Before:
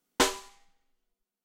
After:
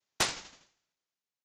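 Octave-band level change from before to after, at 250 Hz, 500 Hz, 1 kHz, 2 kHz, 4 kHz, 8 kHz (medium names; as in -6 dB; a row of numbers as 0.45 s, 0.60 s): -12.0 dB, -10.5 dB, -7.0 dB, -3.0 dB, -2.0 dB, -2.5 dB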